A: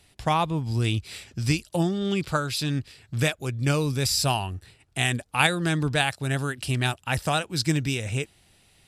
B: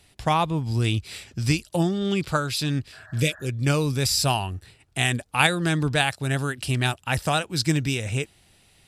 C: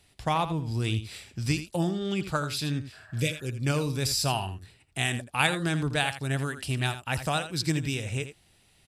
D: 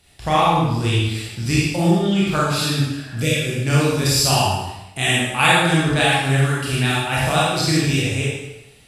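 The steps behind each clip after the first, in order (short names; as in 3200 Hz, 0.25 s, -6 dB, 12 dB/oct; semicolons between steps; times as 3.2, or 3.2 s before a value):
spectral repair 2.95–3.46, 610–1900 Hz after; gain +1.5 dB
echo 82 ms -11.5 dB; gain -5 dB
reverb RT60 0.95 s, pre-delay 26 ms, DRR -7 dB; gain +3.5 dB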